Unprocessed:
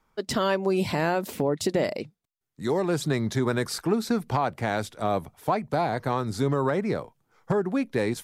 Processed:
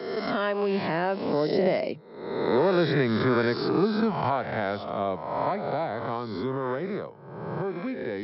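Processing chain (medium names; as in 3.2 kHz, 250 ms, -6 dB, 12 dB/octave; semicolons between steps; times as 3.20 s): reverse spectral sustain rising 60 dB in 0.96 s; Doppler pass-by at 2.76 s, 19 m/s, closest 20 m; high-pass 110 Hz; bass shelf 180 Hz -5 dB; harmonic-percussive split harmonic +5 dB; brick-wall FIR low-pass 5.5 kHz; treble shelf 4.2 kHz -9.5 dB; three bands compressed up and down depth 40%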